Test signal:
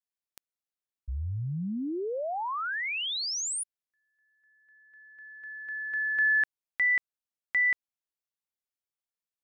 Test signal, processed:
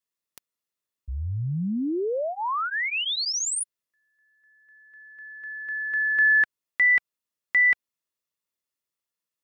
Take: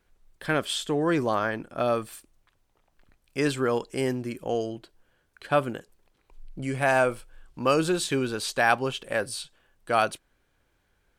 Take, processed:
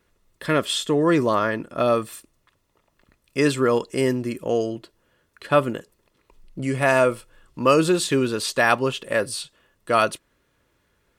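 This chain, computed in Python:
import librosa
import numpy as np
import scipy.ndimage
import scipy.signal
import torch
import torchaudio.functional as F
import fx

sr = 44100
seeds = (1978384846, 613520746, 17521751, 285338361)

y = fx.notch_comb(x, sr, f0_hz=770.0)
y = y * librosa.db_to_amplitude(6.0)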